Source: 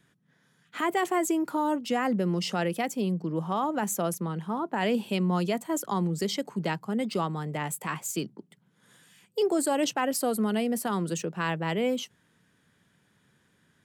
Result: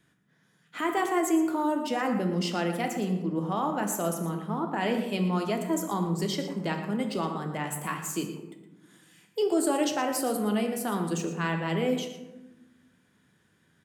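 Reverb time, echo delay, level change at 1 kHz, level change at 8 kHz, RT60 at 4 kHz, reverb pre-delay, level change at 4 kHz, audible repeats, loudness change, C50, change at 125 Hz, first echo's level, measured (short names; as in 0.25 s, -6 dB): 1.1 s, 0.116 s, -0.5 dB, -1.0 dB, 0.50 s, 3 ms, -1.0 dB, 1, 0.0 dB, 6.0 dB, -0.5 dB, -12.0 dB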